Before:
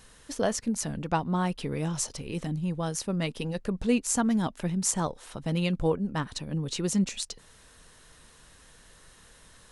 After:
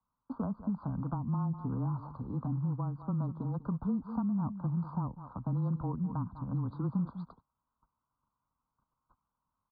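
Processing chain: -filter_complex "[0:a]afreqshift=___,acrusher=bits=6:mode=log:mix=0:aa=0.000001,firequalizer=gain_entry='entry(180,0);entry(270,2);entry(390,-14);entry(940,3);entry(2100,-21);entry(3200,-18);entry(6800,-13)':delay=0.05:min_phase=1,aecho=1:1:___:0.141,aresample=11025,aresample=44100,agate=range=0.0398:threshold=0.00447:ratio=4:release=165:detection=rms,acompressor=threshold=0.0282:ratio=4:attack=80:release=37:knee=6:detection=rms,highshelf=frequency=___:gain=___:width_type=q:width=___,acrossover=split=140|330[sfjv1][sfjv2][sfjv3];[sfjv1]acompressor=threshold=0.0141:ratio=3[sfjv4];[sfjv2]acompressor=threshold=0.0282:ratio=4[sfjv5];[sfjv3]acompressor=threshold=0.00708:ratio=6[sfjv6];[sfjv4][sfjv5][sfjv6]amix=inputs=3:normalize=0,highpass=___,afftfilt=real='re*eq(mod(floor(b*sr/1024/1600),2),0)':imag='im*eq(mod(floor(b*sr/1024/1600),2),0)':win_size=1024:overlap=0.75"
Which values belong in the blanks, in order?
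-20, 197, 1.8k, -14, 3, 41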